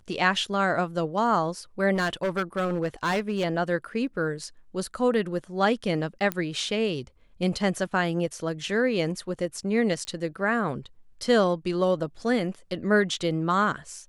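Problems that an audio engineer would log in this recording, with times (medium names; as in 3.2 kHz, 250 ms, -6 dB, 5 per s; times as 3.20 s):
1.94–3.45 s: clipped -21.5 dBFS
6.32 s: pop -12 dBFS
10.05 s: pop -20 dBFS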